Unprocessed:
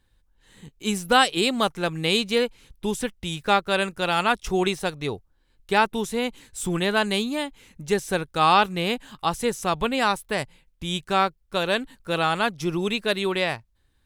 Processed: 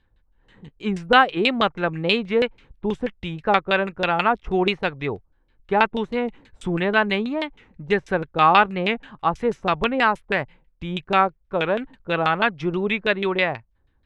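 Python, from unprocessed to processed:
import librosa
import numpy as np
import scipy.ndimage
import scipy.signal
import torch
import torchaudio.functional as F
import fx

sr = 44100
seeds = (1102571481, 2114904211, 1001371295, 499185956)

y = fx.dynamic_eq(x, sr, hz=2200.0, q=1.3, threshold_db=-39.0, ratio=4.0, max_db=5)
y = fx.filter_lfo_lowpass(y, sr, shape='saw_down', hz=6.2, low_hz=530.0, high_hz=3600.0, q=1.1)
y = fx.record_warp(y, sr, rpm=45.0, depth_cents=100.0)
y = F.gain(torch.from_numpy(y), 1.5).numpy()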